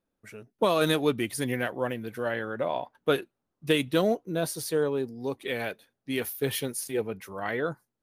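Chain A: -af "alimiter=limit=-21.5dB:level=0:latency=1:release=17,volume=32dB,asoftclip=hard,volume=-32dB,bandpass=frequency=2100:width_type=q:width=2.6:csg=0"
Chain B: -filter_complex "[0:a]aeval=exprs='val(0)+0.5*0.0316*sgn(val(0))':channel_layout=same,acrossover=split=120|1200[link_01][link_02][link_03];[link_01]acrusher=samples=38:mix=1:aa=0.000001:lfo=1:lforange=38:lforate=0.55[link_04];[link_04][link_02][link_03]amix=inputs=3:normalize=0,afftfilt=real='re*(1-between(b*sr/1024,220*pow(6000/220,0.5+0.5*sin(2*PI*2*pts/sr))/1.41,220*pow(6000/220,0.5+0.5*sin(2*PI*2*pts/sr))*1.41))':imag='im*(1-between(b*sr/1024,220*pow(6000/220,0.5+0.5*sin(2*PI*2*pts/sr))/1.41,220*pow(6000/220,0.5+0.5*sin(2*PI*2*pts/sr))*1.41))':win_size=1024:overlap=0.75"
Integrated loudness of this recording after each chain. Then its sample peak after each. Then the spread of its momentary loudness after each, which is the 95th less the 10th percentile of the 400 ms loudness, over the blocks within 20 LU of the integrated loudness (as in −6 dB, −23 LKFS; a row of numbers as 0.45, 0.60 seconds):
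−48.0, −28.0 LKFS; −31.5, −10.0 dBFS; 9, 7 LU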